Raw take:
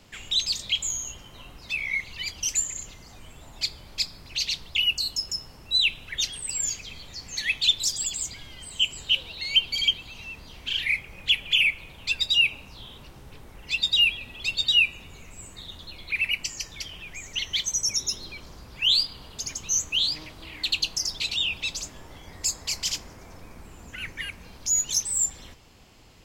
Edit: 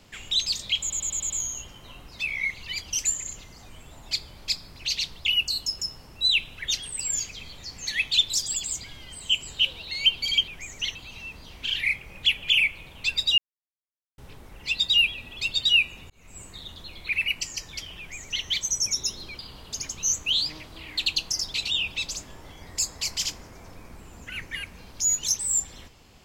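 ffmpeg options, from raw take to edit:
-filter_complex "[0:a]asplit=12[s0][s1][s2][s3][s4][s5][s6][s7][s8][s9][s10][s11];[s0]atrim=end=0.902[s12];[s1]atrim=start=0.798:end=0.902[s13];[s2]atrim=start=0.798:end=0.902[s14];[s3]atrim=start=0.798:end=0.902[s15];[s4]atrim=start=0.798:end=0.902[s16];[s5]atrim=start=0.798:end=9.982[s17];[s6]atrim=start=17.018:end=17.492[s18];[s7]atrim=start=9.978:end=12.41,asetpts=PTS-STARTPTS,afade=t=out:st=2.428:d=0.004:c=hsin[s19];[s8]atrim=start=12.41:end=13.21,asetpts=PTS-STARTPTS,volume=0[s20];[s9]atrim=start=13.21:end=15.13,asetpts=PTS-STARTPTS,afade=t=in:d=0.004:c=hsin,afade=t=out:st=1.916:d=0.004:c=hsin[s21];[s10]atrim=start=15.13:end=18.422,asetpts=PTS-STARTPTS,afade=t=in:d=0.29[s22];[s11]atrim=start=19.048[s23];[s12][s13]acrossfade=d=0.004:c1=hsin:c2=hsin[s24];[s24][s14]acrossfade=d=0.004:c1=hsin:c2=hsin[s25];[s25][s15]acrossfade=d=0.004:c1=hsin:c2=hsin[s26];[s26][s16]acrossfade=d=0.004:c1=hsin:c2=hsin[s27];[s27][s17]acrossfade=d=0.004:c1=hsin:c2=hsin[s28];[s28][s18]acrossfade=d=0.004:c1=hsin:c2=hsin[s29];[s19][s20][s21][s22]concat=n=4:v=0:a=1[s30];[s29][s30]acrossfade=d=0.004:c1=hsin:c2=hsin[s31];[s31][s23]acrossfade=d=0.004:c1=hsin:c2=hsin"

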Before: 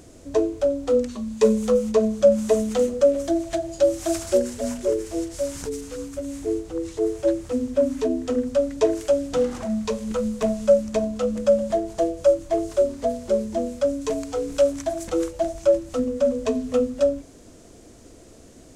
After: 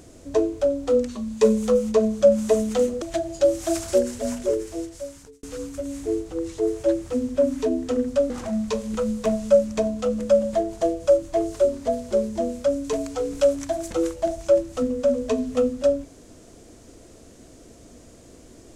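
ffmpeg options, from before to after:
-filter_complex "[0:a]asplit=4[s0][s1][s2][s3];[s0]atrim=end=3.022[s4];[s1]atrim=start=3.408:end=5.82,asetpts=PTS-STARTPTS,afade=t=out:st=1.432:d=0.98[s5];[s2]atrim=start=5.82:end=8.692,asetpts=PTS-STARTPTS,afade=t=in:d=0.004:c=hsin[s6];[s3]atrim=start=9.468[s7];[s5][s6]concat=n=2:v=0:a=1[s8];[s4][s8]acrossfade=d=0.004:c1=hsin:c2=hsin[s9];[s9][s7]acrossfade=d=0.004:c1=hsin:c2=hsin"

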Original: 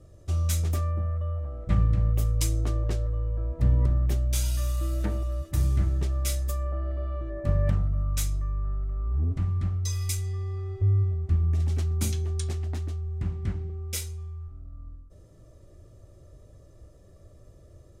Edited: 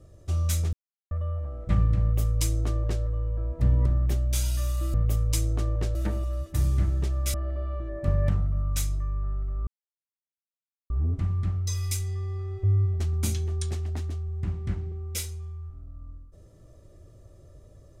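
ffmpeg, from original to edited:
-filter_complex "[0:a]asplit=8[s0][s1][s2][s3][s4][s5][s6][s7];[s0]atrim=end=0.73,asetpts=PTS-STARTPTS,afade=t=out:st=0.726:d=0.004:c=hsin[s8];[s1]atrim=start=0.73:end=1.11,asetpts=PTS-STARTPTS,volume=0[s9];[s2]atrim=start=1.11:end=4.942,asetpts=PTS-STARTPTS,afade=t=in:d=0.004:c=hsin[s10];[s3]atrim=start=2.018:end=3.032[s11];[s4]atrim=start=4.938:end=6.332[s12];[s5]atrim=start=6.748:end=9.08,asetpts=PTS-STARTPTS,afade=t=out:st=2.328:d=0.004:c=hsin,apad=pad_dur=1.23[s13];[s6]atrim=start=9.08:end=11.182,asetpts=PTS-STARTPTS,afade=t=in:d=0.004:c=hsin[s14];[s7]atrim=start=11.778[s15];[s8][s9][s10]concat=n=3:v=0:a=1[s16];[s16][s11]acrossfade=d=0.004:c1=hsin:c2=hsin[s17];[s17][s12]acrossfade=d=0.004:c1=hsin:c2=hsin[s18];[s13][s14]concat=n=2:v=0:a=1[s19];[s18][s19]acrossfade=d=0.004:c1=hsin:c2=hsin[s20];[s20][s15]acrossfade=d=0.004:c1=hsin:c2=hsin"

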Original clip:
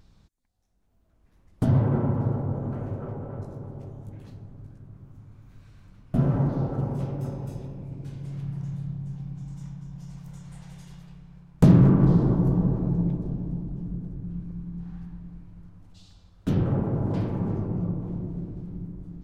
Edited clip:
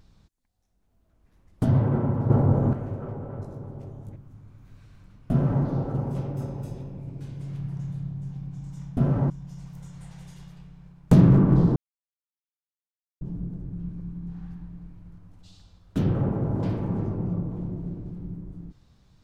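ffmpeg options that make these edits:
-filter_complex "[0:a]asplit=8[s0][s1][s2][s3][s4][s5][s6][s7];[s0]atrim=end=2.302[s8];[s1]atrim=start=2.298:end=2.732,asetpts=PTS-STARTPTS,volume=2.66[s9];[s2]atrim=start=2.728:end=4.162[s10];[s3]atrim=start=4.998:end=9.812[s11];[s4]atrim=start=6.148:end=6.482[s12];[s5]atrim=start=9.808:end=12.27,asetpts=PTS-STARTPTS,afade=t=out:st=2.458:d=0.004:c=hsin[s13];[s6]atrim=start=12.27:end=13.72,asetpts=PTS-STARTPTS,volume=0[s14];[s7]atrim=start=13.72,asetpts=PTS-STARTPTS,afade=t=in:d=0.004:c=hsin[s15];[s8][s9]acrossfade=d=0.004:c1=hsin:c2=hsin[s16];[s16][s10]acrossfade=d=0.004:c1=hsin:c2=hsin[s17];[s17][s11]acrossfade=d=0.004:c1=hsin:c2=hsin[s18];[s18][s12]acrossfade=d=0.004:c1=hsin:c2=hsin[s19];[s13][s14][s15]concat=n=3:v=0:a=1[s20];[s19][s20]acrossfade=d=0.004:c1=hsin:c2=hsin"

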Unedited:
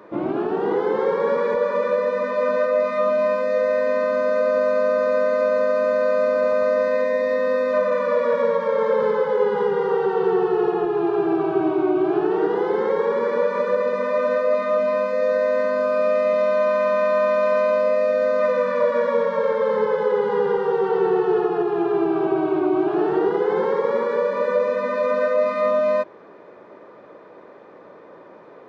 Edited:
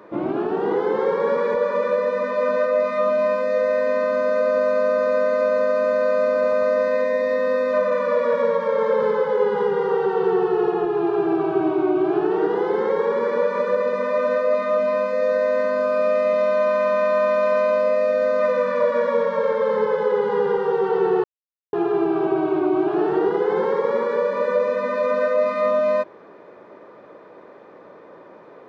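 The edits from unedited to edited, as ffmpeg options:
-filter_complex "[0:a]asplit=3[s0][s1][s2];[s0]atrim=end=21.24,asetpts=PTS-STARTPTS,afade=t=out:st=21.236:d=0.004:c=hsin[s3];[s1]atrim=start=21.24:end=21.73,asetpts=PTS-STARTPTS,volume=0[s4];[s2]atrim=start=21.73,asetpts=PTS-STARTPTS,afade=t=in:d=0.004:c=hsin[s5];[s3][s4][s5]concat=n=3:v=0:a=1"

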